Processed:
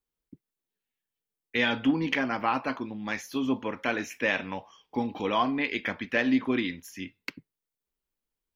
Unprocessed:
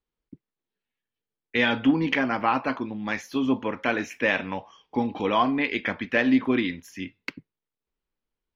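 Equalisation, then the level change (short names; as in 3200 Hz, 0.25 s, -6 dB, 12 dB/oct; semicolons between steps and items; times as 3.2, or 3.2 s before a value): high shelf 6300 Hz +10.5 dB; -4.0 dB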